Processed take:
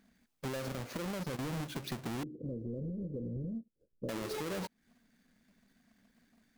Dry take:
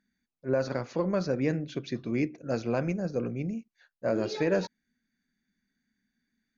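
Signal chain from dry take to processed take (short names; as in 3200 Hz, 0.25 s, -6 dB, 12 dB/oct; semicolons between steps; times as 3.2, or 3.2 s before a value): half-waves squared off; 0.97–1.39 level quantiser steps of 15 dB; 2.23–4.09 elliptic low-pass 510 Hz, stop band 40 dB; limiter -26.5 dBFS, peak gain reduction 11.5 dB; compressor 6:1, threshold -43 dBFS, peak gain reduction 13.5 dB; gain +5.5 dB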